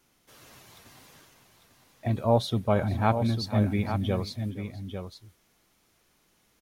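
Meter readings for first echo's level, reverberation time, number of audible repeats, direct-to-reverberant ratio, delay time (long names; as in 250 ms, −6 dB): −18.0 dB, no reverb audible, 2, no reverb audible, 467 ms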